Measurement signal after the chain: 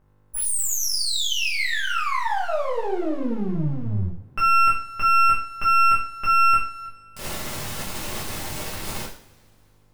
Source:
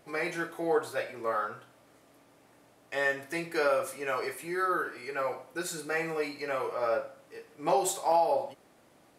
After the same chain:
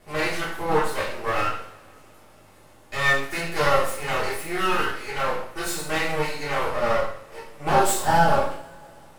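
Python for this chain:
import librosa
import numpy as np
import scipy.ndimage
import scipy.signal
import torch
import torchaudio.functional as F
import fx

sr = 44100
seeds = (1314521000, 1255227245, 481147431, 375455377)

y = fx.dmg_buzz(x, sr, base_hz=50.0, harmonics=30, level_db=-65.0, tilt_db=-6, odd_only=False)
y = np.maximum(y, 0.0)
y = fx.rev_double_slope(y, sr, seeds[0], early_s=0.46, late_s=2.7, knee_db=-26, drr_db=-7.5)
y = y * 10.0 ** (3.5 / 20.0)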